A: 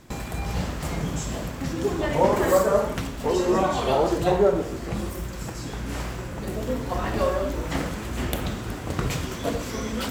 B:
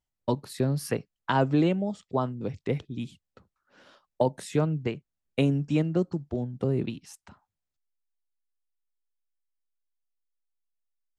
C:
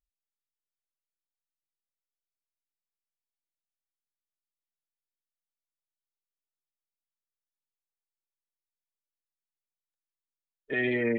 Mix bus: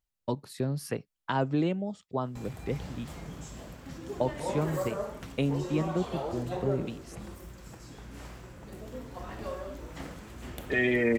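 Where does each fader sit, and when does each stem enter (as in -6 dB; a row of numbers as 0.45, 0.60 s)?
-14.0, -4.5, +2.0 dB; 2.25, 0.00, 0.00 s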